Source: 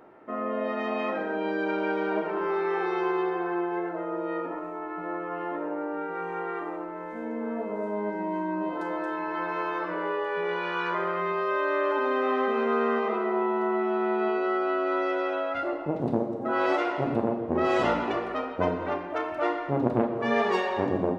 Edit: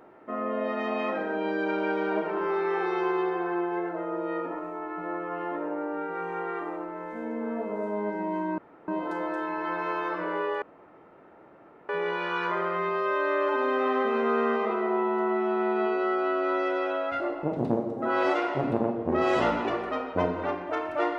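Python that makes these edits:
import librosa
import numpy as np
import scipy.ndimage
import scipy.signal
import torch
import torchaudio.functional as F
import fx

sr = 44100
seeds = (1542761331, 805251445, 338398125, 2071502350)

y = fx.edit(x, sr, fx.insert_room_tone(at_s=8.58, length_s=0.3),
    fx.insert_room_tone(at_s=10.32, length_s=1.27), tone=tone)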